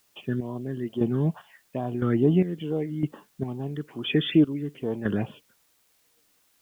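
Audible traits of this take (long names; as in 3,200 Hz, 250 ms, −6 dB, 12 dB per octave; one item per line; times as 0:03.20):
phaser sweep stages 12, 2.3 Hz, lowest notch 740–2,100 Hz
chopped level 0.99 Hz, depth 65%, duty 40%
a quantiser's noise floor 12 bits, dither triangular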